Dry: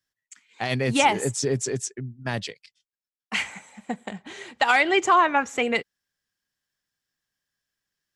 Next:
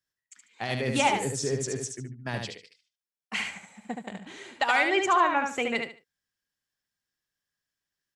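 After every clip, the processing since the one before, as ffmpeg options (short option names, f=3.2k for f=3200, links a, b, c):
-af "aecho=1:1:73|146|219:0.562|0.135|0.0324,volume=-5dB"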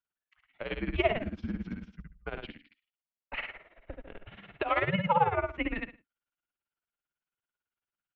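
-af "equalizer=f=1.9k:t=o:w=0.23:g=-6.5,tremolo=f=18:d=0.8,highpass=f=210:t=q:w=0.5412,highpass=f=210:t=q:w=1.307,lowpass=f=3.2k:t=q:w=0.5176,lowpass=f=3.2k:t=q:w=0.7071,lowpass=f=3.2k:t=q:w=1.932,afreqshift=-200"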